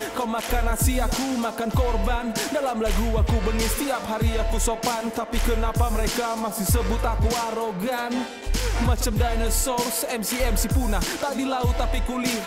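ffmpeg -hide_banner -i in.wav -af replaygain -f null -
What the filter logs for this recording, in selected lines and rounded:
track_gain = +8.4 dB
track_peak = 0.202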